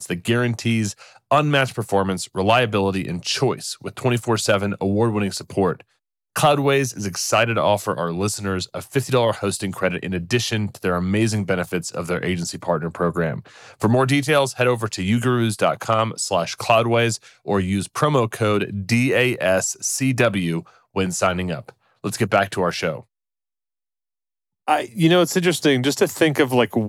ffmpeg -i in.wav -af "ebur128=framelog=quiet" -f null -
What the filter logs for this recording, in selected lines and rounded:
Integrated loudness:
  I:         -20.6 LUFS
  Threshold: -30.8 LUFS
Loudness range:
  LRA:         3.2 LU
  Threshold: -41.3 LUFS
  LRA low:   -23.1 LUFS
  LRA high:  -19.9 LUFS